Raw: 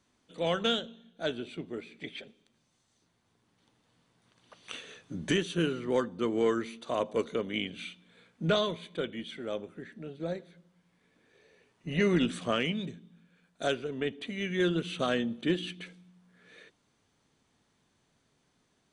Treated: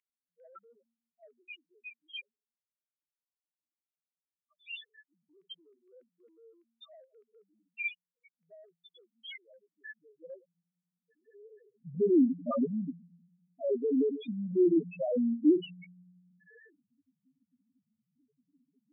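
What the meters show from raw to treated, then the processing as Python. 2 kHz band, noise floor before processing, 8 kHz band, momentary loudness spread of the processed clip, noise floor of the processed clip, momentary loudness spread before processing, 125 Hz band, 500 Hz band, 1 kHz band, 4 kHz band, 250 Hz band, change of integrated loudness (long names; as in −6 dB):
−8.0 dB, −73 dBFS, below −30 dB, 23 LU, below −85 dBFS, 15 LU, −10.0 dB, −2.5 dB, −12.0 dB, −14.0 dB, +1.5 dB, +2.0 dB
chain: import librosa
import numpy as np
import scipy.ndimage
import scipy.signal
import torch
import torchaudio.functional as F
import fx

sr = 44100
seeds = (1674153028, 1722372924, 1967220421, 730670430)

p1 = fx.spec_topn(x, sr, count=1)
p2 = fx.over_compress(p1, sr, threshold_db=-41.0, ratio=-1.0)
p3 = p1 + (p2 * 10.0 ** (1.0 / 20.0))
p4 = fx.filter_sweep_highpass(p3, sr, from_hz=2200.0, to_hz=290.0, start_s=9.51, end_s=11.82, q=3.8)
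y = fx.hum_notches(p4, sr, base_hz=60, count=2)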